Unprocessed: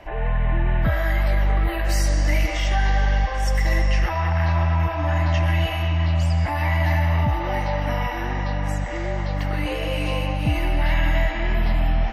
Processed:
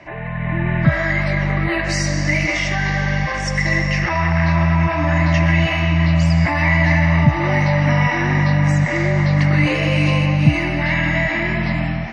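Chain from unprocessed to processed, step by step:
in parallel at +1.5 dB: brickwall limiter −21 dBFS, peak gain reduction 11 dB
on the sum: automatic gain control
loudspeaker in its box 120–6,900 Hz, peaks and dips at 150 Hz +10 dB, 470 Hz −9 dB, 800 Hz −8 dB, 1,400 Hz −4 dB, 2,100 Hz +5 dB, 3,200 Hz −8 dB
level −2 dB

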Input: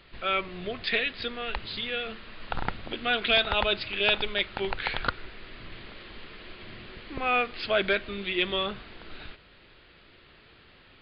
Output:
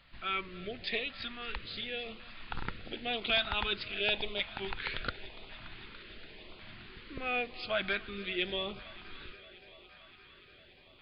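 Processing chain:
on a send: feedback echo with a high-pass in the loop 287 ms, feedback 84%, high-pass 150 Hz, level −19.5 dB
on the sum: auto-filter notch saw up 0.91 Hz 360–1,800 Hz
level −6 dB

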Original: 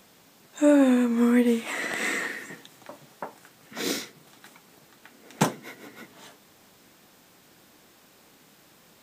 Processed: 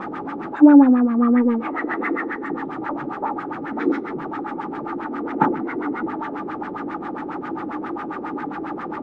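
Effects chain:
converter with a step at zero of −23.5 dBFS
hollow resonant body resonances 310/850/1,200 Hz, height 17 dB, ringing for 30 ms
auto-filter low-pass sine 7.4 Hz 410–1,900 Hz
level −9 dB

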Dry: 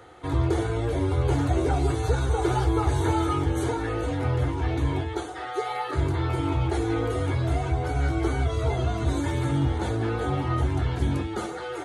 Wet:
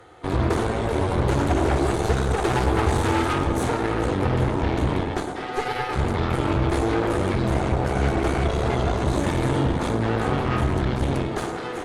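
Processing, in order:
harmonic generator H 8 −13 dB, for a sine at −11 dBFS
tape delay 106 ms, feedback 85%, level −5 dB, low-pass 1,200 Hz

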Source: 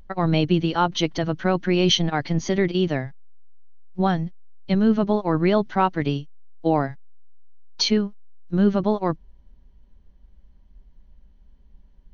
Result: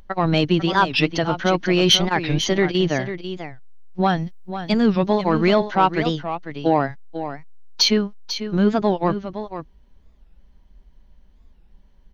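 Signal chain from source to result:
low-shelf EQ 370 Hz −6.5 dB
soft clipping −10.5 dBFS, distortion −22 dB
0:04.17–0:05.55: high-shelf EQ 5,200 Hz +9.5 dB
single-tap delay 495 ms −10.5 dB
wow of a warped record 45 rpm, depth 250 cents
level +6 dB

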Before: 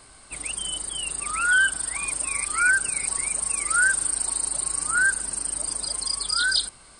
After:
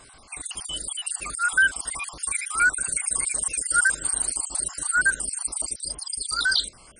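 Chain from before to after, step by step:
time-frequency cells dropped at random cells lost 49%
0:05.74–0:06.31: parametric band 1,600 Hz −12 dB 2.6 octaves
level +2 dB

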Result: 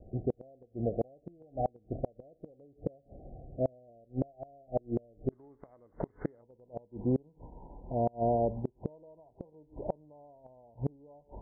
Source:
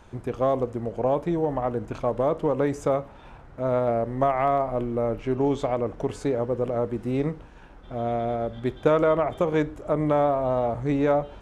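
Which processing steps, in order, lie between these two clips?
Chebyshev low-pass filter 760 Hz, order 10, from 0:05.31 2,100 Hz, from 0:06.41 1,000 Hz
gate with flip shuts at −19 dBFS, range −33 dB

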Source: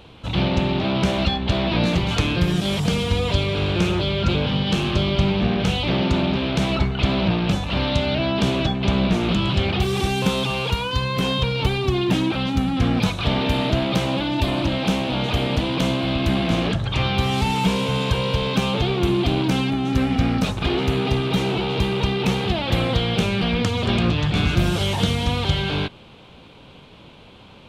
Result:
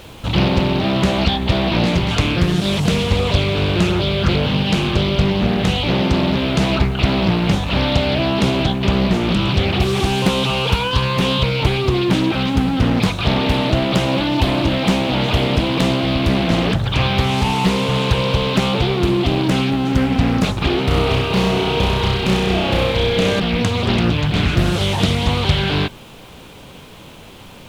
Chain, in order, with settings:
background noise pink −51 dBFS
0:20.84–0:23.40: flutter between parallel walls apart 5.5 metres, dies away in 1.2 s
speech leveller within 4 dB 0.5 s
highs frequency-modulated by the lows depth 0.56 ms
level +3.5 dB

